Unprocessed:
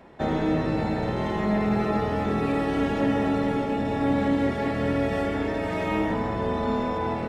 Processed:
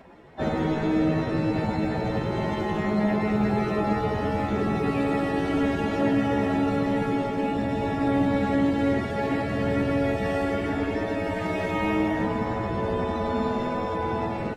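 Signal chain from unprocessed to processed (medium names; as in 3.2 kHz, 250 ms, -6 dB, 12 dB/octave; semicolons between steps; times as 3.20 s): plain phase-vocoder stretch 2×; trim +1.5 dB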